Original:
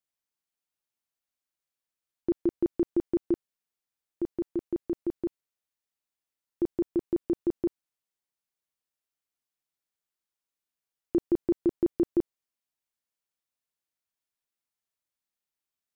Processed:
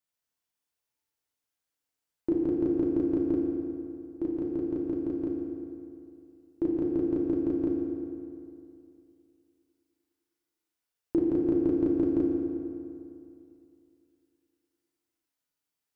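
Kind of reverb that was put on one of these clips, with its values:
feedback delay network reverb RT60 2.6 s, high-frequency decay 0.65×, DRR −2.5 dB
level −1 dB

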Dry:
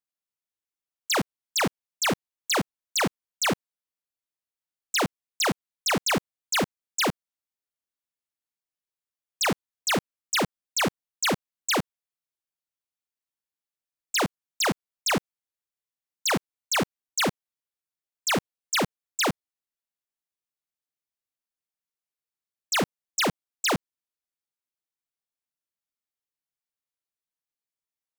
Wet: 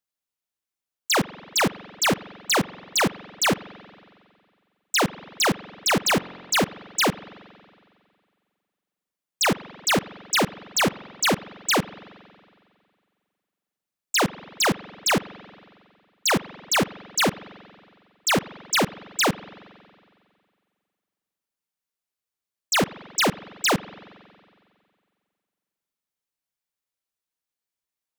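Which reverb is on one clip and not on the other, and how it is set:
spring reverb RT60 2.1 s, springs 45 ms, chirp 50 ms, DRR 16.5 dB
level +3.5 dB

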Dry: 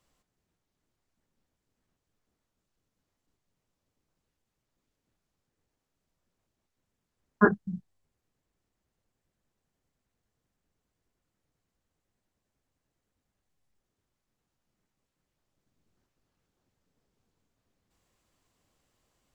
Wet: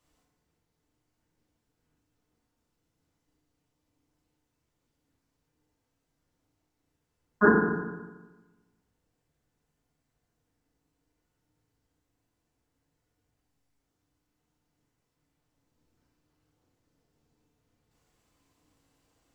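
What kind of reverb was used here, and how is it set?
feedback delay network reverb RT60 1.2 s, low-frequency decay 1.1×, high-frequency decay 0.65×, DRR −4 dB
level −2.5 dB

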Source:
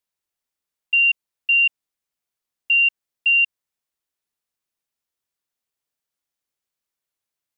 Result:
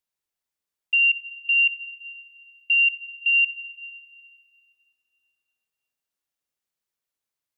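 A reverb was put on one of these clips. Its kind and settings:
dense smooth reverb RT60 4 s, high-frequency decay 0.6×, DRR 10 dB
level −2.5 dB

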